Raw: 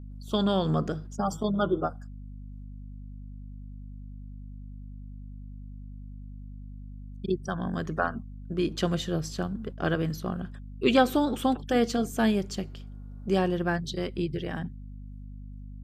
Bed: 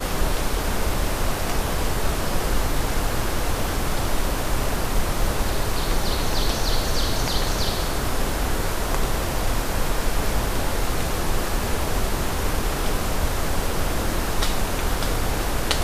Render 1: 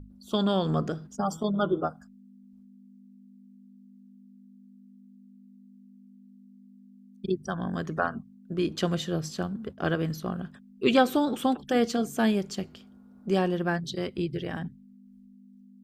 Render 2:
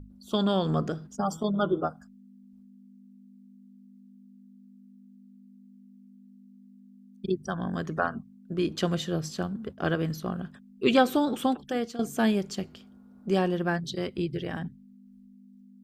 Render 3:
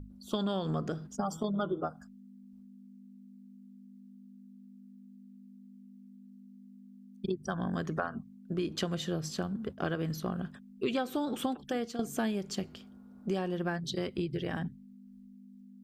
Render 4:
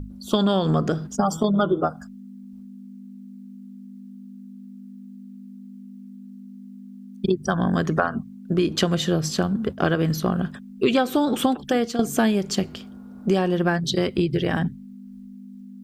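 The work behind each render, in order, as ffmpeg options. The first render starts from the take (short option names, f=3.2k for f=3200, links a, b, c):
-af "bandreject=f=50:t=h:w=6,bandreject=f=100:t=h:w=6,bandreject=f=150:t=h:w=6"
-filter_complex "[0:a]asplit=2[a][b];[a]atrim=end=11.99,asetpts=PTS-STARTPTS,afade=t=out:st=11.44:d=0.55:silence=0.223872[c];[b]atrim=start=11.99,asetpts=PTS-STARTPTS,afade=t=in:d=0.004:c=hsin:silence=0.223872[d];[c][d]concat=n=2:v=0:a=1"
-af "acompressor=threshold=-29dB:ratio=6"
-af "volume=12dB"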